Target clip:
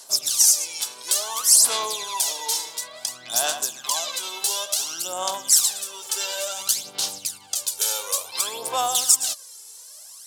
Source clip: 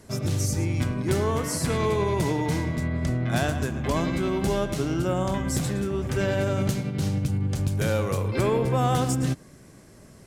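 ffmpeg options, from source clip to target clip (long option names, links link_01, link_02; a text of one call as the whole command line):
ffmpeg -i in.wav -af "aexciter=amount=10.9:drive=4.8:freq=3100,aphaser=in_gain=1:out_gain=1:delay=2.3:decay=0.65:speed=0.57:type=sinusoidal,highpass=frequency=840:width_type=q:width=1.7,volume=-7.5dB" out.wav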